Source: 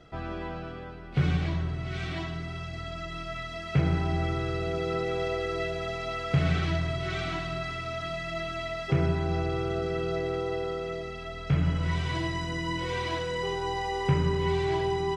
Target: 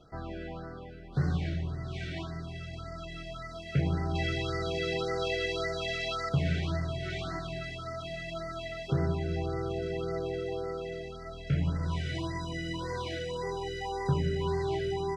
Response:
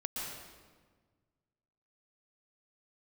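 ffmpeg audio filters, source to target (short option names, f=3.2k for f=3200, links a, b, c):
-filter_complex "[0:a]asettb=1/sr,asplit=3[a][b][c];[a]atrim=end=4.154[d];[b]atrim=start=4.15:end=6.29,asetpts=PTS-STARTPTS,afade=t=in:d=0.004:c=qsin,afade=t=out:st=2.136:d=0.004:c=qsin,equalizer=f=3.7k:t=o:w=2.9:g=10[e];[c]atrim=start=6.286[f];[d][e]acrossfade=d=0.004:c1=hsin:c2=qsin[g];[g][f]acrossfade=d=0.004:c1=qsin:c2=hsin,afftfilt=real='re*(1-between(b*sr/1024,930*pow(3000/930,0.5+0.5*sin(2*PI*1.8*pts/sr))/1.41,930*pow(3000/930,0.5+0.5*sin(2*PI*1.8*pts/sr))*1.41))':imag='im*(1-between(b*sr/1024,930*pow(3000/930,0.5+0.5*sin(2*PI*1.8*pts/sr))/1.41,930*pow(3000/930,0.5+0.5*sin(2*PI*1.8*pts/sr))*1.41))':win_size=1024:overlap=0.75,volume=-3.5dB"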